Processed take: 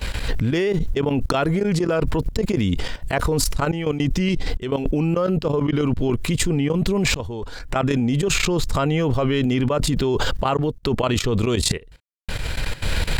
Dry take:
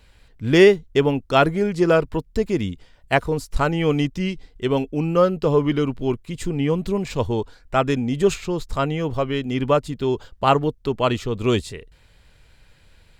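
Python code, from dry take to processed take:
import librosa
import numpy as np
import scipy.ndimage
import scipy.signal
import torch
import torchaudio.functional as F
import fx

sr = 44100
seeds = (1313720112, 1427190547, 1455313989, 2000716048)

y = fx.level_steps(x, sr, step_db=18)
y = fx.tremolo_random(y, sr, seeds[0], hz=3.5, depth_pct=100)
y = fx.env_flatten(y, sr, amount_pct=100)
y = y * librosa.db_to_amplitude(-2.0)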